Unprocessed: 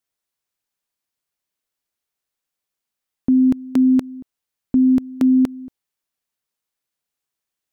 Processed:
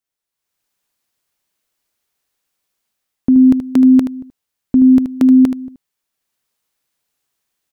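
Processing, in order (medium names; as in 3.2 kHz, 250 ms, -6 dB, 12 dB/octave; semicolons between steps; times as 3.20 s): delay 77 ms -9.5 dB; level rider gain up to 11.5 dB; trim -2.5 dB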